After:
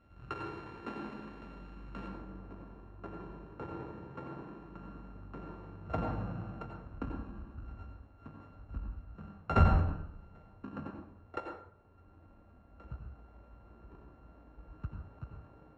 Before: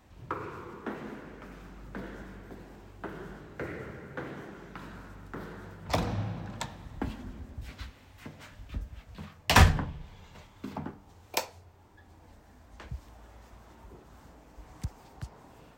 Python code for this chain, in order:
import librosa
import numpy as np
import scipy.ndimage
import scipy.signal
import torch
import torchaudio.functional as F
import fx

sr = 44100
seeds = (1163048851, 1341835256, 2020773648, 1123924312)

y = np.r_[np.sort(x[:len(x) // 32 * 32].reshape(-1, 32), axis=1).ravel(), x[len(x) // 32 * 32:]]
y = fx.lowpass(y, sr, hz=fx.steps((0.0, 2200.0), (2.08, 1200.0)), slope=12)
y = fx.rev_plate(y, sr, seeds[0], rt60_s=0.56, hf_ratio=0.7, predelay_ms=75, drr_db=3.0)
y = y * 10.0 ** (-4.5 / 20.0)